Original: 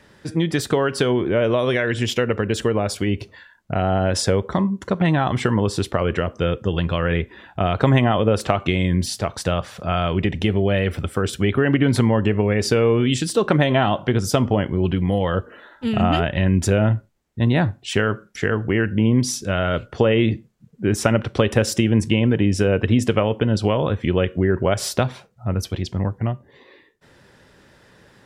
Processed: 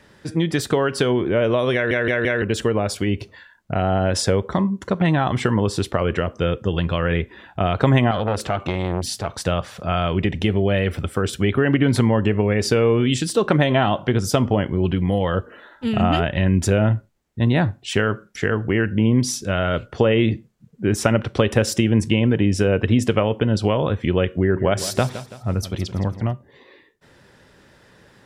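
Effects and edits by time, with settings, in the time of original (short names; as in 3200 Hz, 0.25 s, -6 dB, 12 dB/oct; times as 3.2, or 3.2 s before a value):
1.74 stutter in place 0.17 s, 4 plays
8.11–9.4 core saturation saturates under 1000 Hz
24.37–26.33 feedback echo 0.166 s, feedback 44%, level -13.5 dB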